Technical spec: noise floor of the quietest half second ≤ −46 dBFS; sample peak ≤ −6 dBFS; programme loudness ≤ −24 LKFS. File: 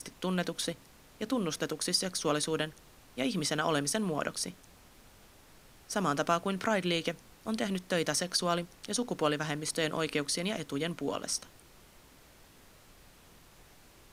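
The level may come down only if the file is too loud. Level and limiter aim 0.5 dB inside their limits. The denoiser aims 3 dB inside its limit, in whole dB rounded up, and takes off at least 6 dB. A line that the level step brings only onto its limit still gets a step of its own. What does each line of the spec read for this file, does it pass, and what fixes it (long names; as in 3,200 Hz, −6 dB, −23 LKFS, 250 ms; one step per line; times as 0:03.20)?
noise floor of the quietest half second −58 dBFS: in spec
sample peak −13.5 dBFS: in spec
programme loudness −32.5 LKFS: in spec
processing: no processing needed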